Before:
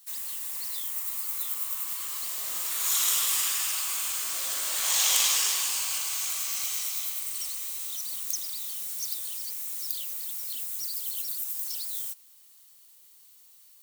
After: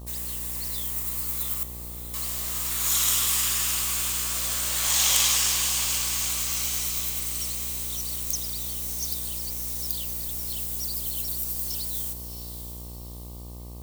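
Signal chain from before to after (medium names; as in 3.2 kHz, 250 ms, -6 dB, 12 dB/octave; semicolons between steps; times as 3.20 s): 1.63–2.14 s: elliptic low-pass 500 Hz; echo that smears into a reverb 651 ms, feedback 43%, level -9.5 dB; mains buzz 60 Hz, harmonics 20, -42 dBFS -7 dB/octave; trim +2 dB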